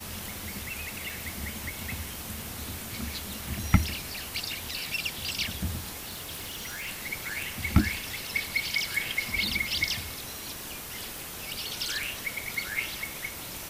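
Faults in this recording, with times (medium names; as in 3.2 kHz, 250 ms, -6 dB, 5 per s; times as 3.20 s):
1.10 s: pop
6.08–6.89 s: clipped -33 dBFS
11.18 s: pop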